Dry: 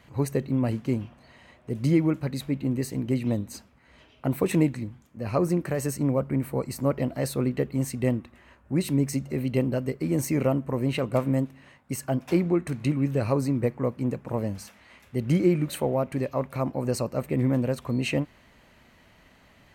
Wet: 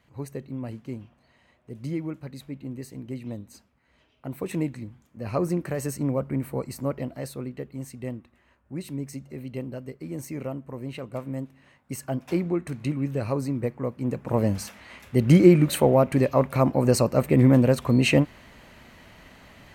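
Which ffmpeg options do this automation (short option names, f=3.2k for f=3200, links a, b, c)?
-af "volume=14.5dB,afade=t=in:st=4.26:d=1.01:silence=0.421697,afade=t=out:st=6.55:d=0.92:silence=0.421697,afade=t=in:st=11.26:d=0.7:silence=0.473151,afade=t=in:st=13.99:d=0.53:silence=0.334965"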